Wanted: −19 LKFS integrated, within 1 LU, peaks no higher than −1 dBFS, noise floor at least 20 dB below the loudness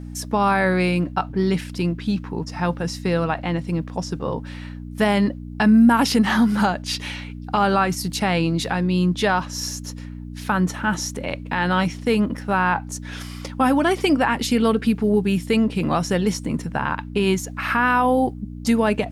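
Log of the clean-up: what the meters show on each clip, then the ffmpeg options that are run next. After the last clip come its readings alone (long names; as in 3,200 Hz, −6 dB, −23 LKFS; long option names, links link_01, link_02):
mains hum 60 Hz; hum harmonics up to 300 Hz; level of the hum −31 dBFS; integrated loudness −21.0 LKFS; sample peak −7.0 dBFS; target loudness −19.0 LKFS
→ -af "bandreject=frequency=60:width_type=h:width=4,bandreject=frequency=120:width_type=h:width=4,bandreject=frequency=180:width_type=h:width=4,bandreject=frequency=240:width_type=h:width=4,bandreject=frequency=300:width_type=h:width=4"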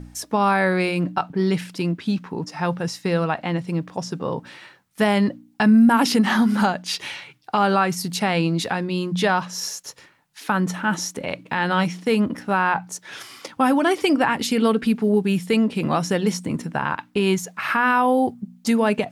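mains hum none found; integrated loudness −21.5 LKFS; sample peak −6.5 dBFS; target loudness −19.0 LKFS
→ -af "volume=2.5dB"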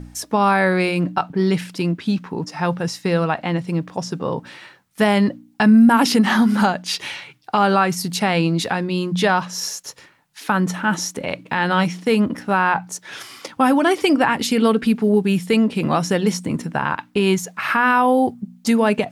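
integrated loudness −19.0 LKFS; sample peak −4.0 dBFS; background noise floor −53 dBFS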